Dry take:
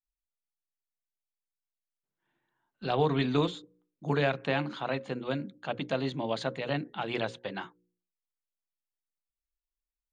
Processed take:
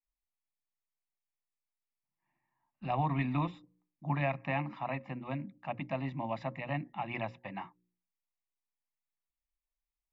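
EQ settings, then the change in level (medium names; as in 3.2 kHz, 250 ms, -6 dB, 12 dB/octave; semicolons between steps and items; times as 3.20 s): Savitzky-Golay filter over 25 samples; static phaser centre 2.2 kHz, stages 8; 0.0 dB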